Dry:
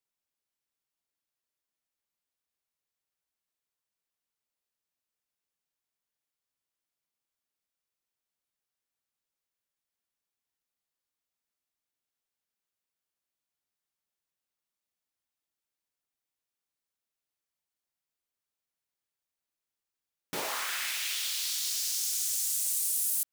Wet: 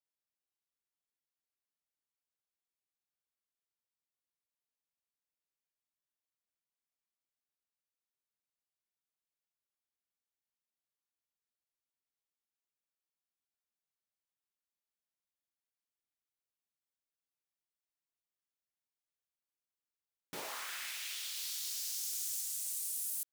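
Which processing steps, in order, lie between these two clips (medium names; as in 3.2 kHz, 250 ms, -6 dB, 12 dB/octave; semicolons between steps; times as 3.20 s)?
21.36–22.41 s: fifteen-band graphic EQ 160 Hz +6 dB, 400 Hz +8 dB, 16 kHz +4 dB; trim -9 dB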